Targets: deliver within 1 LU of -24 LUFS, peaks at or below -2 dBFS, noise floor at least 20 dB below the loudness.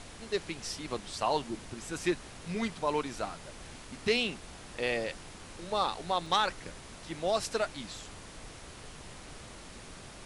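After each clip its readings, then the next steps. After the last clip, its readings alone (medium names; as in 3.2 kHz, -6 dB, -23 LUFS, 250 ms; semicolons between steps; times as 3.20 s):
dropouts 1; longest dropout 2.2 ms; noise floor -49 dBFS; noise floor target -54 dBFS; loudness -33.5 LUFS; peak level -13.5 dBFS; loudness target -24.0 LUFS
-> interpolate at 6.26 s, 2.2 ms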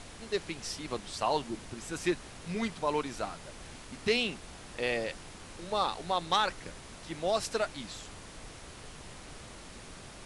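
dropouts 0; noise floor -49 dBFS; noise floor target -54 dBFS
-> noise print and reduce 6 dB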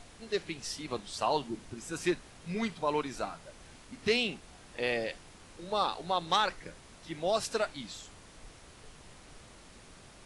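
noise floor -55 dBFS; loudness -33.5 LUFS; peak level -13.5 dBFS; loudness target -24.0 LUFS
-> trim +9.5 dB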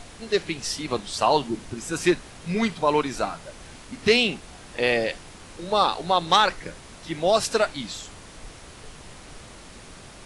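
loudness -24.0 LUFS; peak level -4.0 dBFS; noise floor -45 dBFS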